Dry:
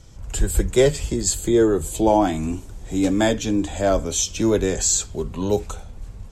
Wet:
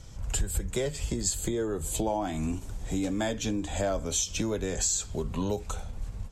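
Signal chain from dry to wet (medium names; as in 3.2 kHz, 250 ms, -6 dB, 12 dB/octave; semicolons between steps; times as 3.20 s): compression 6:1, threshold -25 dBFS, peak gain reduction 13.5 dB; peaking EQ 350 Hz -4.5 dB 0.59 oct; endings held to a fixed fall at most 290 dB/s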